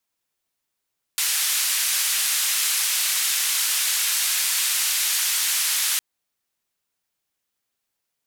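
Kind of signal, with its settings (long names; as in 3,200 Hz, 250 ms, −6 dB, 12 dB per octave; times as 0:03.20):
band-limited noise 1,800–13,000 Hz, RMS −22.5 dBFS 4.81 s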